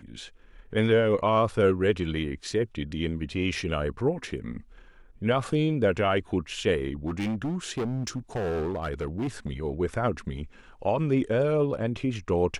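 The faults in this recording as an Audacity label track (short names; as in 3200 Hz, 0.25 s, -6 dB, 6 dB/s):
7.070000	9.520000	clipped -25.5 dBFS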